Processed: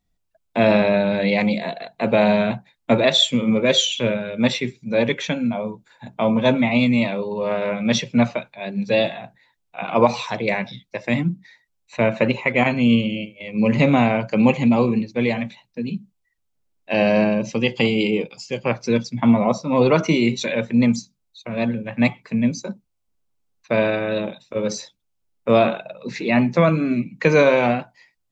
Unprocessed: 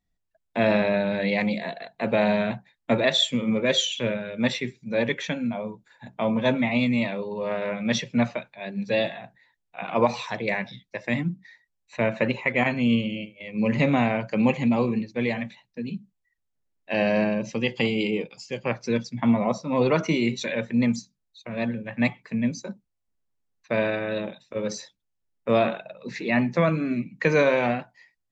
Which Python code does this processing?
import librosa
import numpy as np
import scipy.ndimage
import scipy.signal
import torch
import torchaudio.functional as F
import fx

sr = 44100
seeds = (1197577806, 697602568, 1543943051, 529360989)

y = fx.peak_eq(x, sr, hz=1800.0, db=-6.5, octaves=0.26)
y = y * 10.0 ** (5.5 / 20.0)